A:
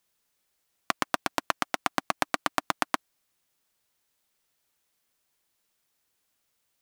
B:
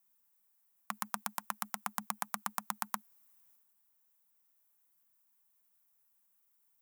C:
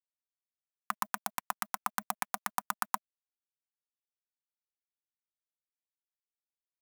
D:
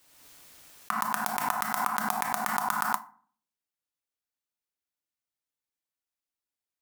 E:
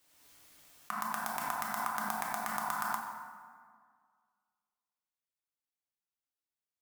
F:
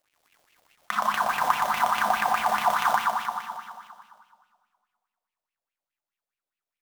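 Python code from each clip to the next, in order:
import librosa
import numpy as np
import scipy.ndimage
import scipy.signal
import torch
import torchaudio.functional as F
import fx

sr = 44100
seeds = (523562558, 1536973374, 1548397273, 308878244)

y1 = fx.curve_eq(x, sr, hz=(140.0, 210.0, 320.0, 890.0, 4300.0, 15000.0), db=(0, 12, -29, 0, -18, -9))
y1 = fx.transient(y1, sr, attack_db=-4, sustain_db=7)
y1 = fx.riaa(y1, sr, side='recording')
y1 = F.gain(torch.from_numpy(y1), -3.5).numpy()
y2 = y1 + 0.32 * np.pad(y1, (int(4.0 * sr / 1000.0), 0))[:len(y1)]
y2 = np.sign(y2) * np.maximum(np.abs(y2) - 10.0 ** (-51.0 / 20.0), 0.0)
y2 = fx.bell_lfo(y2, sr, hz=4.7, low_hz=700.0, high_hz=2200.0, db=7)
y2 = F.gain(torch.from_numpy(y2), 1.0).numpy()
y3 = fx.rider(y2, sr, range_db=10, speed_s=0.5)
y3 = fx.rev_fdn(y3, sr, rt60_s=0.47, lf_ratio=1.3, hf_ratio=0.55, size_ms=20.0, drr_db=8.5)
y3 = fx.pre_swell(y3, sr, db_per_s=40.0)
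y3 = F.gain(torch.from_numpy(y3), 3.5).numpy()
y4 = fx.rev_plate(y3, sr, seeds[0], rt60_s=1.9, hf_ratio=0.6, predelay_ms=0, drr_db=3.0)
y4 = F.gain(torch.from_numpy(y4), -8.0).numpy()
y5 = fx.dead_time(y4, sr, dead_ms=0.12)
y5 = fx.echo_feedback(y5, sr, ms=154, feedback_pct=60, wet_db=-6.0)
y5 = fx.bell_lfo(y5, sr, hz=4.8, low_hz=570.0, high_hz=2700.0, db=16)
y5 = F.gain(torch.from_numpy(y5), 4.0).numpy()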